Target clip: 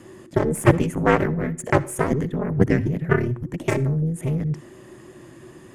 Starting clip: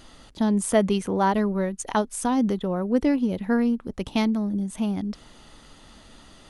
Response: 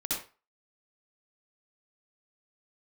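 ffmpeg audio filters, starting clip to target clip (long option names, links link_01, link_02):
-filter_complex "[0:a]afreqshift=-340,aeval=exprs='0.473*(cos(1*acos(clip(val(0)/0.473,-1,1)))-cos(1*PI/2))+0.168*(cos(2*acos(clip(val(0)/0.473,-1,1)))-cos(2*PI/2))+0.0596*(cos(4*acos(clip(val(0)/0.473,-1,1)))-cos(4*PI/2))+0.133*(cos(7*acos(clip(val(0)/0.473,-1,1)))-cos(7*PI/2))+0.015*(cos(8*acos(clip(val(0)/0.473,-1,1)))-cos(8*PI/2))':channel_layout=same,asetrate=49833,aresample=44100,equalizer=frequency=125:width_type=o:width=1:gain=12,equalizer=frequency=250:width_type=o:width=1:gain=8,equalizer=frequency=500:width_type=o:width=1:gain=10,equalizer=frequency=1000:width_type=o:width=1:gain=3,equalizer=frequency=2000:width_type=o:width=1:gain=11,equalizer=frequency=4000:width_type=o:width=1:gain=-10,equalizer=frequency=8000:width_type=o:width=1:gain=9,asplit=2[link_01][link_02];[1:a]atrim=start_sample=2205[link_03];[link_02][link_03]afir=irnorm=-1:irlink=0,volume=-22.5dB[link_04];[link_01][link_04]amix=inputs=2:normalize=0,volume=-5.5dB"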